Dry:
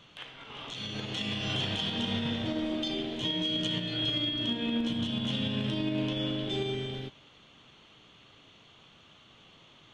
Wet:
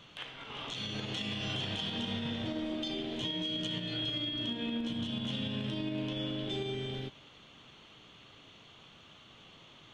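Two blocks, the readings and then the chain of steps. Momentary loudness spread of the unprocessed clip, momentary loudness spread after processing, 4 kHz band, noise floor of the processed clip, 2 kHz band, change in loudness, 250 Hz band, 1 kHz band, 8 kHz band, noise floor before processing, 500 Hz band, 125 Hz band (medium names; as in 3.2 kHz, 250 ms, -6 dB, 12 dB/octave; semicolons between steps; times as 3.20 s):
9 LU, 21 LU, -4.0 dB, -57 dBFS, -3.5 dB, -4.5 dB, -4.5 dB, -3.5 dB, -3.0 dB, -58 dBFS, -4.0 dB, -4.0 dB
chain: compression 2.5:1, threshold -36 dBFS, peak gain reduction 6.5 dB; trim +1 dB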